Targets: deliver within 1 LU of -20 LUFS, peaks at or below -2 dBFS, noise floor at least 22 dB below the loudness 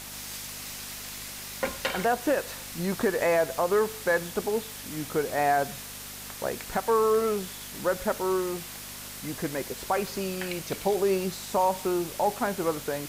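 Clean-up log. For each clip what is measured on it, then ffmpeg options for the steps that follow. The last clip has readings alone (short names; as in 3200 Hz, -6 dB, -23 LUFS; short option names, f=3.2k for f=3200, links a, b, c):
hum 50 Hz; harmonics up to 250 Hz; hum level -49 dBFS; noise floor -41 dBFS; noise floor target -51 dBFS; loudness -28.5 LUFS; peak -13.5 dBFS; loudness target -20.0 LUFS
-> -af "bandreject=f=50:t=h:w=4,bandreject=f=100:t=h:w=4,bandreject=f=150:t=h:w=4,bandreject=f=200:t=h:w=4,bandreject=f=250:t=h:w=4"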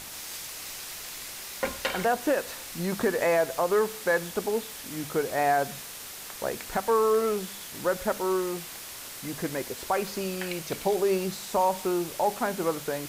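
hum none; noise floor -41 dBFS; noise floor target -51 dBFS
-> -af "afftdn=nr=10:nf=-41"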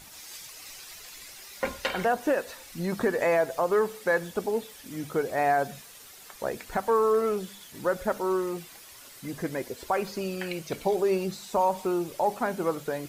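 noise floor -49 dBFS; noise floor target -51 dBFS
-> -af "afftdn=nr=6:nf=-49"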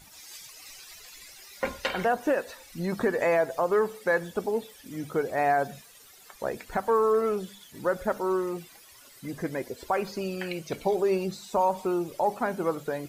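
noise floor -53 dBFS; loudness -28.5 LUFS; peak -14.5 dBFS; loudness target -20.0 LUFS
-> -af "volume=8.5dB"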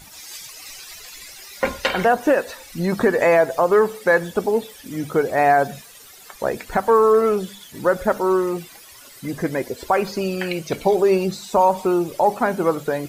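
loudness -20.0 LUFS; peak -6.0 dBFS; noise floor -44 dBFS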